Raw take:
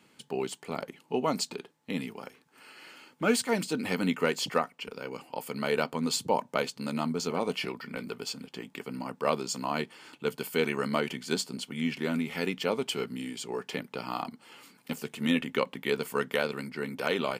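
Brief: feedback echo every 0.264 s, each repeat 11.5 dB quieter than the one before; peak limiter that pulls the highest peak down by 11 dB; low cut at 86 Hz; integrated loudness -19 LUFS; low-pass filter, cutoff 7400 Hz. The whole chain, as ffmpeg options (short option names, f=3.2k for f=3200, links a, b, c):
-af "highpass=86,lowpass=7.4k,alimiter=limit=-22dB:level=0:latency=1,aecho=1:1:264|528|792:0.266|0.0718|0.0194,volume=16dB"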